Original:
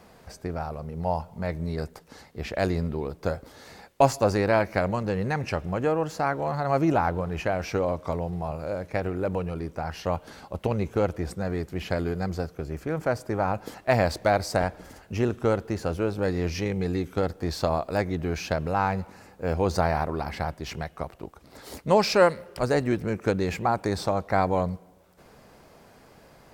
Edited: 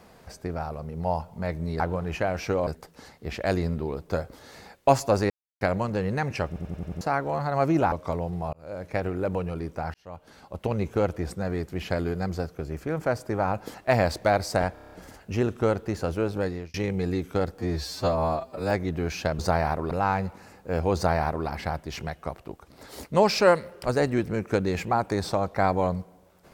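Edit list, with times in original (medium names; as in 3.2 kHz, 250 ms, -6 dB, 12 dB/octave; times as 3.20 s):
4.43–4.74 s: mute
5.60 s: stutter in place 0.09 s, 6 plays
7.05–7.92 s: move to 1.80 s
8.53–8.91 s: fade in
9.94–10.81 s: fade in
14.74 s: stutter 0.03 s, 7 plays
16.19–16.56 s: fade out
17.41–17.97 s: stretch 2×
19.69–20.21 s: copy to 18.65 s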